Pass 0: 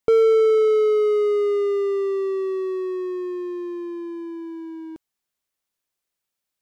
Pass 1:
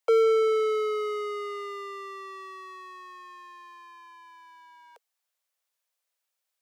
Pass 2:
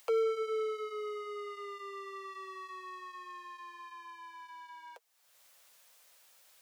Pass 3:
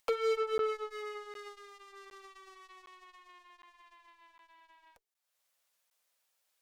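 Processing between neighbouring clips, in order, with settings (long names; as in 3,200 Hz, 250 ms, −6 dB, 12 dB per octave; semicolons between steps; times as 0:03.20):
Butterworth high-pass 460 Hz 96 dB per octave
upward compression, threshold −28 dBFS; flanger 1.2 Hz, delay 5.4 ms, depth 2.9 ms, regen −42%; level −6 dB
mains-hum notches 50/100/150/200/250/300/350/400/450 Hz; harmonic generator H 7 −18 dB, 8 −29 dB, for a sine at −24.5 dBFS; regular buffer underruns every 0.76 s, samples 512, zero, from 0:00.58; level +2.5 dB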